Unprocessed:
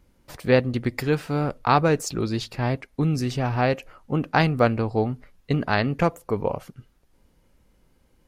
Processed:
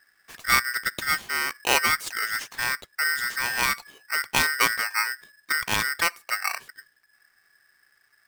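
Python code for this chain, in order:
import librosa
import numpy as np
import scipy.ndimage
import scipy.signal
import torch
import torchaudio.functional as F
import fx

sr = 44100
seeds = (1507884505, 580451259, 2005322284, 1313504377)

y = x * np.sign(np.sin(2.0 * np.pi * 1700.0 * np.arange(len(x)) / sr))
y = F.gain(torch.from_numpy(y), -3.0).numpy()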